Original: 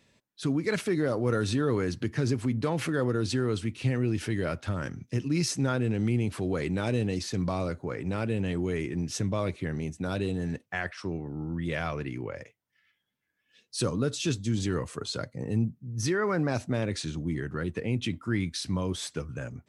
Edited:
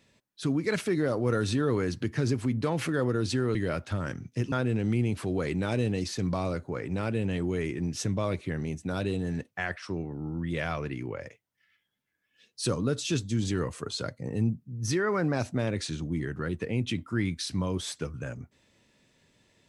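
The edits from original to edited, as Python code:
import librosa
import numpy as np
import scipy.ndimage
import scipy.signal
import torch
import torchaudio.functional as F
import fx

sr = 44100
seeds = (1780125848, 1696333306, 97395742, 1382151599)

y = fx.edit(x, sr, fx.cut(start_s=3.55, length_s=0.76),
    fx.cut(start_s=5.28, length_s=0.39), tone=tone)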